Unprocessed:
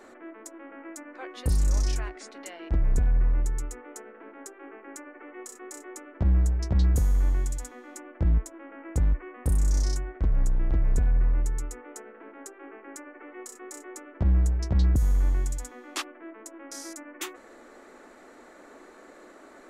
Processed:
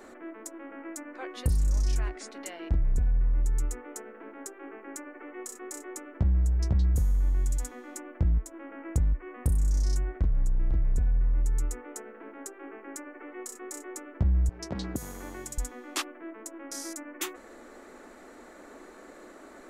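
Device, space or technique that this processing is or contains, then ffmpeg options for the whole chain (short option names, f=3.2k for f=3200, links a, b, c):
ASMR close-microphone chain: -filter_complex "[0:a]asettb=1/sr,asplit=3[a][b][c];[a]atrim=end=14.494[d];[b]atrim=start=14.49:end=15.58,asetpts=PTS-STARTPTS,afade=t=in:d=0.004:c=qsin,afade=t=out:st=1.086:d=0.004:c=qsin,highpass=280[e];[c]atrim=start=15.576[f];[d][e]acrossfade=d=0.004:c1=hsin:c2=qsin[g];[g][f]acrossfade=d=0.004:c1=qsin:c2=hsin,lowshelf=f=200:g=6.5,acompressor=threshold=-22dB:ratio=6,highshelf=f=9k:g=6"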